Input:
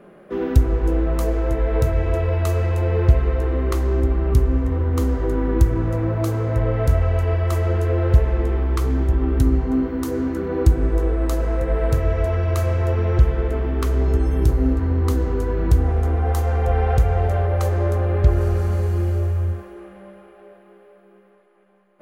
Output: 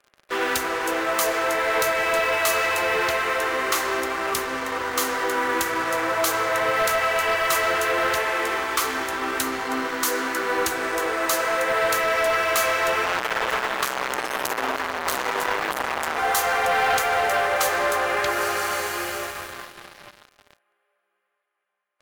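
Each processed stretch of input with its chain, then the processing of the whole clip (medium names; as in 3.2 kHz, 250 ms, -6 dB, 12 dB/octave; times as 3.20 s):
13.05–16.18 s: hard clipper -19.5 dBFS + waveshaping leveller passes 2
whole clip: high-pass 1.3 kHz 12 dB/octave; waveshaping leveller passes 5; trim -1 dB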